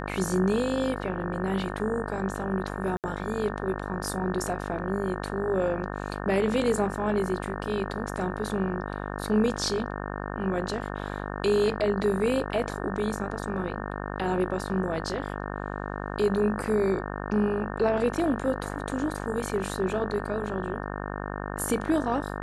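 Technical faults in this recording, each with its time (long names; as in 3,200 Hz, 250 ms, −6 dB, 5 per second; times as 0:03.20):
mains buzz 50 Hz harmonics 36 −34 dBFS
0:02.97–0:03.04: drop-out 68 ms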